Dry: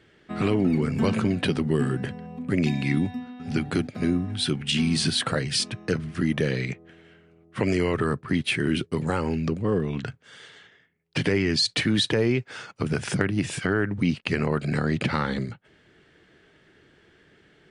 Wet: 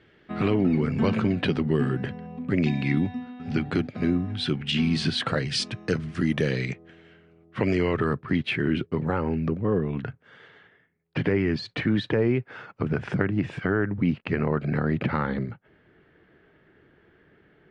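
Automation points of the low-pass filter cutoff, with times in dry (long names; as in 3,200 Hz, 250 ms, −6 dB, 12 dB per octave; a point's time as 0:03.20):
0:05.08 3,800 Hz
0:05.94 7,400 Hz
0:06.59 7,400 Hz
0:07.59 3,700 Hz
0:08.15 3,700 Hz
0:09.08 1,900 Hz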